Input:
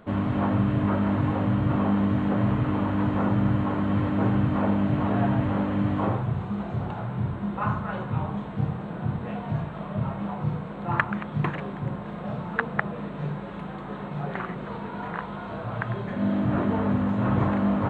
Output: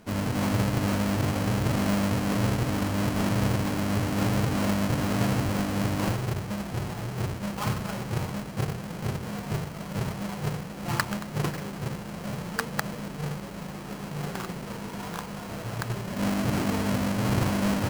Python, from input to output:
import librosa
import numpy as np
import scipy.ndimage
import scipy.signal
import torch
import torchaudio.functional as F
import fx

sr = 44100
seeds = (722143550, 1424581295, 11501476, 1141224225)

y = fx.halfwave_hold(x, sr)
y = fx.notch(y, sr, hz=3600.0, q=16.0)
y = y * 10.0 ** (-6.5 / 20.0)